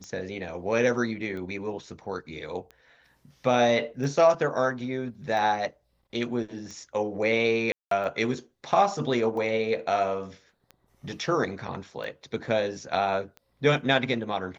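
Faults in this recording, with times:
scratch tick 45 rpm −28 dBFS
0:07.72–0:07.91: drop-out 193 ms

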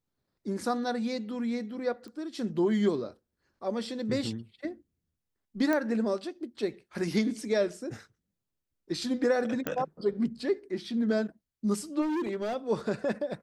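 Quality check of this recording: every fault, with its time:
0:02.08: click −34 dBFS
0:05.73: click −16 dBFS
0:09.67: click −16 dBFS
0:12.01–0:12.56: clipping −28 dBFS

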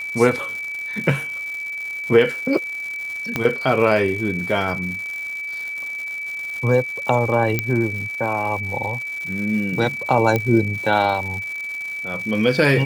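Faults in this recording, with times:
surface crackle 260 per second −29 dBFS
whistle 2,300 Hz −26 dBFS
0:03.36: click −7 dBFS
0:07.59: click −6 dBFS
0:10.36: click −7 dBFS

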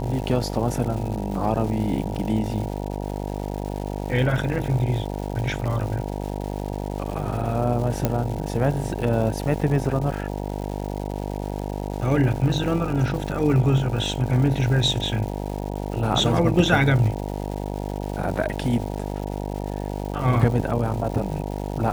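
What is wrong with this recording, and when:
mains buzz 50 Hz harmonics 19 −29 dBFS
surface crackle 380 per second −32 dBFS
0:08.05: click −7 dBFS

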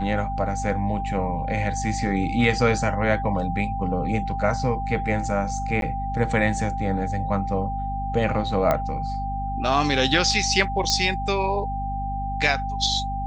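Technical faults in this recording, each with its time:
mains hum 50 Hz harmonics 5 −30 dBFS
whistle 790 Hz −28 dBFS
0:05.81–0:05.82: drop-out 12 ms
0:08.71: click −9 dBFS
0:10.90: click −9 dBFS

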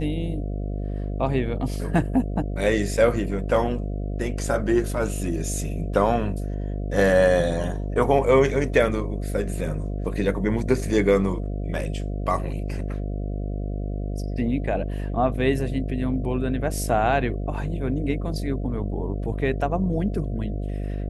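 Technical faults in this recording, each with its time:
mains buzz 50 Hz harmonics 14 −28 dBFS

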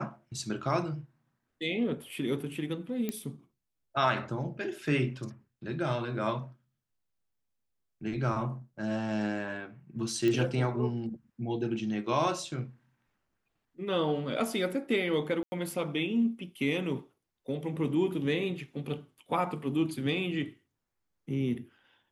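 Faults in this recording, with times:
0:03.09: click −19 dBFS
0:10.28: click −18 dBFS
0:15.43–0:15.52: drop-out 90 ms

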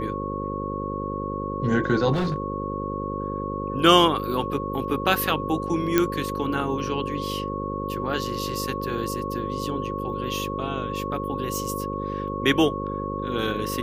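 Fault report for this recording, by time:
mains buzz 50 Hz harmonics 11 −31 dBFS
whistle 1,100 Hz −31 dBFS
0:02.12–0:03.28: clipping −20.5 dBFS
0:05.98: click −5 dBFS

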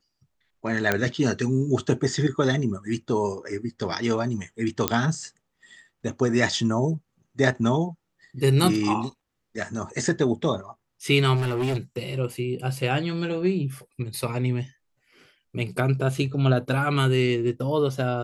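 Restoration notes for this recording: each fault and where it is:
0:00.92: click −7 dBFS
0:04.88: click −3 dBFS
0:11.35–0:11.77: clipping −22 dBFS

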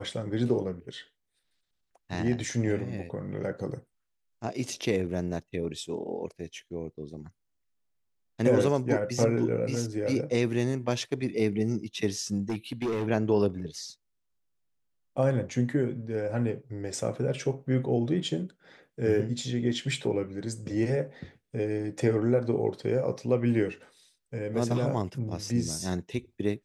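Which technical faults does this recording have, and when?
0:12.50–0:13.07: clipping −26 dBFS

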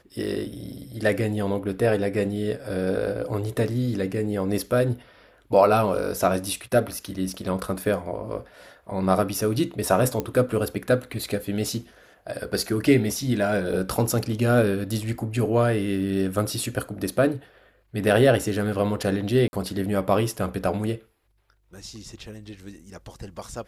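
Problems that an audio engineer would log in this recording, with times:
0:10.20: click −13 dBFS
0:19.48–0:19.53: drop-out 50 ms

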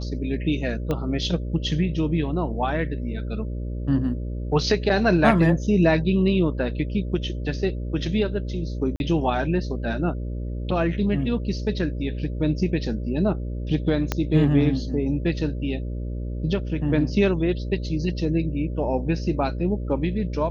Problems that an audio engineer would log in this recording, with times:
mains buzz 60 Hz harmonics 10 −29 dBFS
0:00.91: click −14 dBFS
0:08.96–0:09.00: drop-out 41 ms
0:14.12: click −8 dBFS

